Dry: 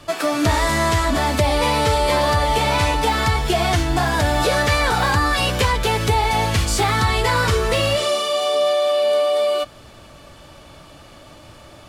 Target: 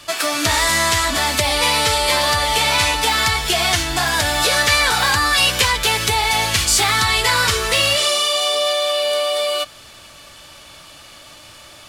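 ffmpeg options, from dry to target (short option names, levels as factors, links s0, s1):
-af "tiltshelf=f=1200:g=-8,volume=1.19"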